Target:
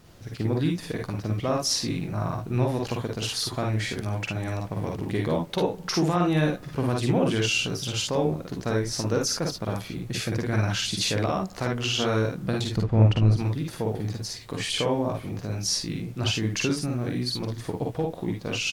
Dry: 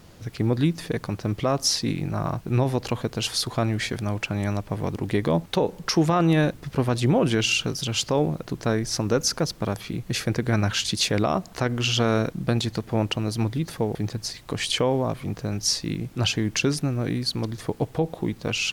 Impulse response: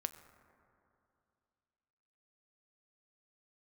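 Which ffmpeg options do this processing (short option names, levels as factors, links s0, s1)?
-filter_complex "[0:a]asettb=1/sr,asplit=3[s0][s1][s2];[s0]atrim=end=12.764[s3];[s1]atrim=start=12.76:end=13.37,asetpts=PTS-STARTPTS,afade=t=in:d=0.004:c=qsin,afade=t=out:st=0.606:d=0.004:c=qsin,aemphasis=mode=reproduction:type=bsi[s4];[s2]atrim=start=13.366[s5];[s3][s4]acrossfade=d=0.004:c1=hsin:c2=qsin[s6];[s6][s5]acrossfade=d=0.004:c1=qsin:c2=hsin,aecho=1:1:46|57|73:0.631|0.631|0.282,asplit=2[s7][s8];[1:a]atrim=start_sample=2205[s9];[s8][s9]afir=irnorm=-1:irlink=0,volume=0.316[s10];[s7][s10]amix=inputs=2:normalize=0,volume=0.447"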